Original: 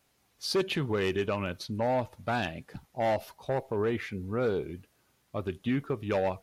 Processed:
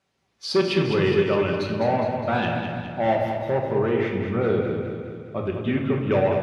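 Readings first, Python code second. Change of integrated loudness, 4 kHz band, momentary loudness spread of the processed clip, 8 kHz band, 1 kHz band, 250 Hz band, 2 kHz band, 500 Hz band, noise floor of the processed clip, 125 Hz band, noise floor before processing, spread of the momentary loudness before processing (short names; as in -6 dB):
+7.5 dB, +5.0 dB, 9 LU, n/a, +7.5 dB, +8.5 dB, +7.0 dB, +8.5 dB, -71 dBFS, +8.5 dB, -71 dBFS, 9 LU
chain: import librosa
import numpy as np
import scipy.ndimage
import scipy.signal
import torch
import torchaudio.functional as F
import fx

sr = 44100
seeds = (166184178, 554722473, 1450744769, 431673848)

y = fx.noise_reduce_blind(x, sr, reduce_db=7)
y = scipy.signal.sosfilt(scipy.signal.butter(2, 74.0, 'highpass', fs=sr, output='sos'), y)
y = fx.air_absorb(y, sr, metres=77.0)
y = fx.echo_feedback(y, sr, ms=206, feedback_pct=55, wet_db=-7)
y = fx.room_shoebox(y, sr, seeds[0], volume_m3=500.0, walls='mixed', distance_m=1.1)
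y = y * 10.0 ** (4.5 / 20.0)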